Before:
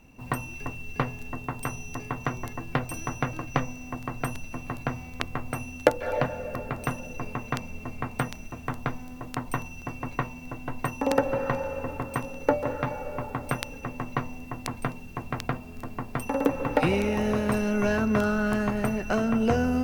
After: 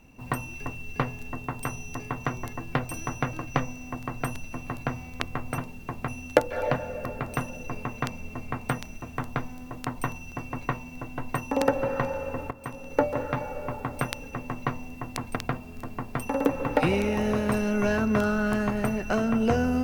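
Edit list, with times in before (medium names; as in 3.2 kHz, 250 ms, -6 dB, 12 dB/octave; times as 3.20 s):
12.01–12.51 s: fade in, from -14 dB
14.86–15.36 s: move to 5.58 s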